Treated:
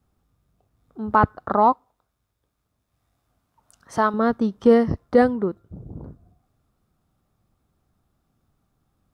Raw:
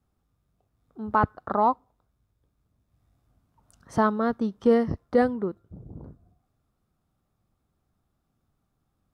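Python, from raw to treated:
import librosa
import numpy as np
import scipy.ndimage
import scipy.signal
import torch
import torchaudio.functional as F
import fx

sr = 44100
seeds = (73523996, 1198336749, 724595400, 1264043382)

y = fx.low_shelf(x, sr, hz=380.0, db=-11.0, at=(1.72, 4.14))
y = y * librosa.db_to_amplitude(5.0)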